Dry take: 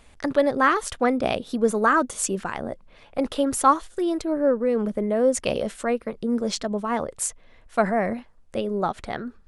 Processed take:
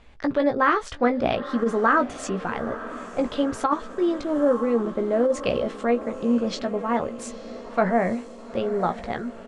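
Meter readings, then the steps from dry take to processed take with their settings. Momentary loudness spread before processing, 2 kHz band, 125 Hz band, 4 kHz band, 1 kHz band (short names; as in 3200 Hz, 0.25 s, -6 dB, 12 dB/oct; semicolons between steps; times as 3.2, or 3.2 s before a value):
10 LU, 0.0 dB, +0.5 dB, -2.0 dB, -1.0 dB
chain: air absorption 130 m; doubler 17 ms -7 dB; diffused feedback echo 0.917 s, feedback 60%, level -15 dB; negative-ratio compressor -17 dBFS, ratio -0.5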